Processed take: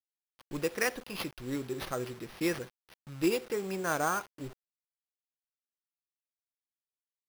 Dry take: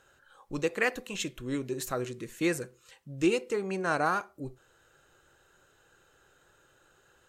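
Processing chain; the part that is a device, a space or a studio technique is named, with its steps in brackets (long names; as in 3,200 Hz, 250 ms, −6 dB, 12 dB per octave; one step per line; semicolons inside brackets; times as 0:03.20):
early 8-bit sampler (sample-rate reduction 7,600 Hz, jitter 0%; bit reduction 8 bits)
level −2.5 dB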